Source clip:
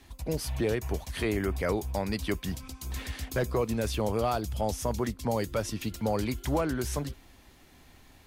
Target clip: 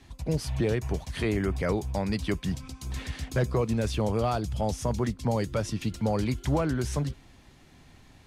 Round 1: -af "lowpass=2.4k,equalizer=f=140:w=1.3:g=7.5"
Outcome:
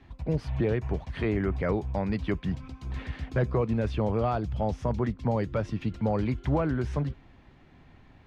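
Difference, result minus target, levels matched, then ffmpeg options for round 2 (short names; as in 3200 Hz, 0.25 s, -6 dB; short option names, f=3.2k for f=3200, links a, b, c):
8000 Hz band -18.0 dB
-af "lowpass=9k,equalizer=f=140:w=1.3:g=7.5"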